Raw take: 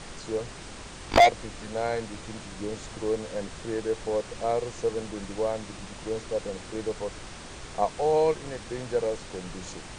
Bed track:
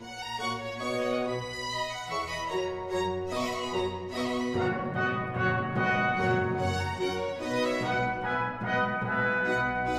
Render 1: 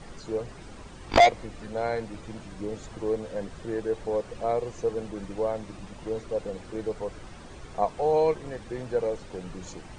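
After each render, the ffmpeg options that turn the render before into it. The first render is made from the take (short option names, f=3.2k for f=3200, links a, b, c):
-af "afftdn=nr=10:nf=-43"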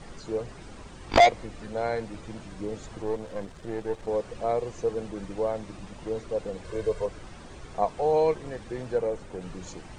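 -filter_complex "[0:a]asettb=1/sr,asplit=3[a][b][c];[a]atrim=end=3.024[d];[b]atrim=start=3.02:end=4.08,asetpts=PTS-STARTPTS,afade=t=in:d=0.004:c=qsin,afade=t=out:st=1.056:d=0.004:c=qsin,aeval=exprs='if(lt(val(0),0),0.447*val(0),val(0))':c=same[e];[c]atrim=start=4.076[f];[d][e]acrossfade=d=0.004:c1=hsin:c2=qsin[g];[g][f]acrossfade=d=0.004:c1=qsin:c2=hsin,asettb=1/sr,asplit=3[h][i][j];[h]atrim=end=6.644[k];[i]atrim=start=6.64:end=7.06,asetpts=PTS-STARTPTS,afade=t=in:d=0.004:c=qsin,afade=t=out:st=0.416:d=0.004:c=qsin,aecho=1:1:1.9:0.94,atrim=end_sample=18522[l];[j]atrim=start=7.056[m];[k][l]acrossfade=d=0.004:c1=hsin:c2=qsin[n];[n][m]acrossfade=d=0.004:c1=qsin:c2=hsin,asettb=1/sr,asplit=3[o][p][q];[o]atrim=end=8.984[r];[p]atrim=start=8.98:end=9.42,asetpts=PTS-STARTPTS,afade=t=in:d=0.004:c=qsin,afade=t=out:st=0.436:d=0.004:c=qsin,equalizer=f=4.4k:t=o:w=1.3:g=-6[s];[q]atrim=start=9.416[t];[r][s]acrossfade=d=0.004:c1=hsin:c2=qsin[u];[u][t]acrossfade=d=0.004:c1=qsin:c2=hsin"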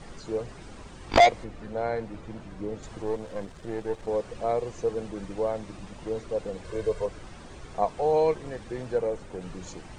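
-filter_complex "[0:a]asettb=1/sr,asplit=3[a][b][c];[a]atrim=end=1.444[d];[b]atrim=start=1.44:end=2.83,asetpts=PTS-STARTPTS,afade=t=in:d=0.004:c=qsin,afade=t=out:st=1.386:d=0.004:c=qsin,highshelf=f=3.3k:g=-9.5[e];[c]atrim=start=2.826[f];[d][e]acrossfade=d=0.004:c1=hsin:c2=qsin[g];[g][f]acrossfade=d=0.004:c1=qsin:c2=hsin"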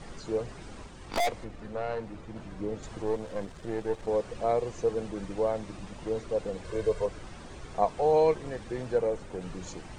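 -filter_complex "[0:a]asettb=1/sr,asplit=3[a][b][c];[a]atrim=end=0.864[d];[b]atrim=start=0.86:end=2.36,asetpts=PTS-STARTPTS,afade=t=in:d=0.004:c=qsin,afade=t=out:st=1.496:d=0.004:c=qsin,aeval=exprs='(tanh(17.8*val(0)+0.5)-tanh(0.5))/17.8':c=same[e];[c]atrim=start=2.356[f];[d][e]acrossfade=d=0.004:c1=hsin:c2=qsin[g];[g][f]acrossfade=d=0.004:c1=qsin:c2=hsin"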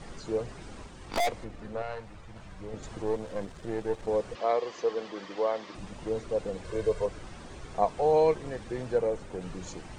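-filter_complex "[0:a]asettb=1/sr,asplit=3[a][b][c];[a]atrim=end=1.824[d];[b]atrim=start=1.82:end=2.74,asetpts=PTS-STARTPTS,afade=t=in:d=0.004:c=qsin,afade=t=out:st=0.916:d=0.004:c=qsin,equalizer=f=290:t=o:w=1.6:g=-12[e];[c]atrim=start=2.736[f];[d][e]acrossfade=d=0.004:c1=hsin:c2=qsin[g];[g][f]acrossfade=d=0.004:c1=qsin:c2=hsin,asettb=1/sr,asplit=3[h][i][j];[h]atrim=end=4.354[k];[i]atrim=start=4.35:end=5.75,asetpts=PTS-STARTPTS,afade=t=in:d=0.004:c=qsin,afade=t=out:st=1.396:d=0.004:c=qsin,highpass=330,equalizer=f=1.1k:t=q:w=4:g=6,equalizer=f=1.9k:t=q:w=4:g=6,equalizer=f=3.2k:t=q:w=4:g=7,equalizer=f=4.7k:t=q:w=4:g=6,lowpass=f=6.4k:w=0.5412,lowpass=f=6.4k:w=1.3066[l];[j]atrim=start=5.746[m];[k][l]acrossfade=d=0.004:c1=hsin:c2=qsin[n];[n][m]acrossfade=d=0.004:c1=qsin:c2=hsin"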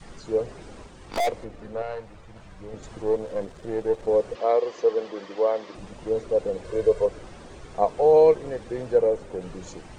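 -af "adynamicequalizer=threshold=0.01:dfrequency=480:dqfactor=1.3:tfrequency=480:tqfactor=1.3:attack=5:release=100:ratio=0.375:range=4:mode=boostabove:tftype=bell"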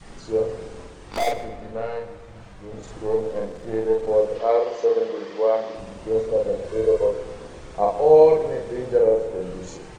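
-filter_complex "[0:a]asplit=2[a][b];[b]adelay=45,volume=-2dB[c];[a][c]amix=inputs=2:normalize=0,asplit=2[d][e];[e]adelay=126,lowpass=f=4.2k:p=1,volume=-12.5dB,asplit=2[f][g];[g]adelay=126,lowpass=f=4.2k:p=1,volume=0.53,asplit=2[h][i];[i]adelay=126,lowpass=f=4.2k:p=1,volume=0.53,asplit=2[j][k];[k]adelay=126,lowpass=f=4.2k:p=1,volume=0.53,asplit=2[l][m];[m]adelay=126,lowpass=f=4.2k:p=1,volume=0.53[n];[d][f][h][j][l][n]amix=inputs=6:normalize=0"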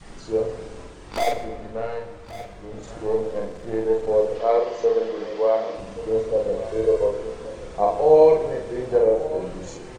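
-filter_complex "[0:a]asplit=2[a][b];[b]adelay=42,volume=-13dB[c];[a][c]amix=inputs=2:normalize=0,aecho=1:1:1127:0.188"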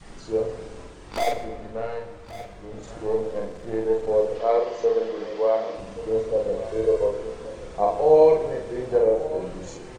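-af "volume=-1.5dB"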